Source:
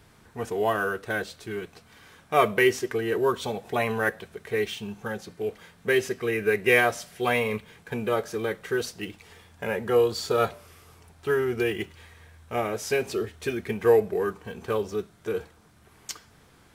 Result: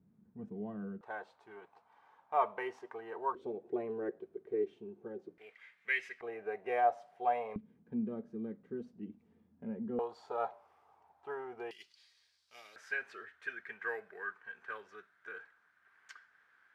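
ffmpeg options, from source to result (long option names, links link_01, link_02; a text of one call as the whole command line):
ffmpeg -i in.wav -af "asetnsamples=nb_out_samples=441:pad=0,asendcmd='1.01 bandpass f 880;3.35 bandpass f 360;5.38 bandpass f 2100;6.21 bandpass f 740;7.56 bandpass f 230;9.99 bandpass f 830;11.71 bandpass f 4700;12.76 bandpass f 1600',bandpass=frequency=200:width_type=q:width=5.4:csg=0" out.wav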